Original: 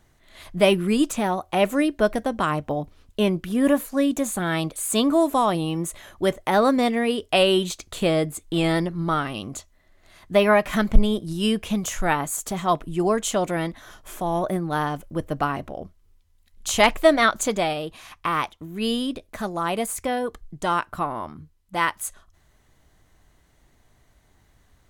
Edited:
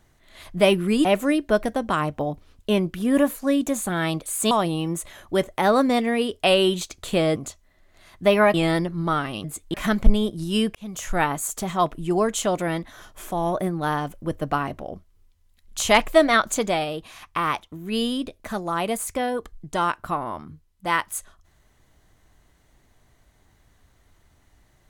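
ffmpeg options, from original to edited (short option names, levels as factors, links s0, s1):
-filter_complex "[0:a]asplit=8[s0][s1][s2][s3][s4][s5][s6][s7];[s0]atrim=end=1.052[s8];[s1]atrim=start=1.548:end=5.012[s9];[s2]atrim=start=5.398:end=8.252[s10];[s3]atrim=start=9.448:end=10.632[s11];[s4]atrim=start=8.548:end=9.452[s12];[s5]atrim=start=8.248:end=8.552[s13];[s6]atrim=start=10.628:end=11.64,asetpts=PTS-STARTPTS,afade=t=out:st=1.008:d=0.004:c=hsin[s14];[s7]atrim=start=11.64,asetpts=PTS-STARTPTS,afade=t=in:d=0.4[s15];[s8][s9]acrossfade=d=0.004:c1=hsin:c2=hsin[s16];[s16][s10]acrossfade=d=0.004:c1=hsin:c2=hsin[s17];[s17][s11]acrossfade=d=0.004:c1=hsin:c2=hsin[s18];[s18][s12]acrossfade=d=0.004:c1=hsin:c2=hsin[s19];[s19][s13]acrossfade=d=0.004:c1=hsin:c2=hsin[s20];[s14][s15]concat=n=2:v=0:a=1[s21];[s20][s21]acrossfade=d=0.004:c1=hsin:c2=hsin"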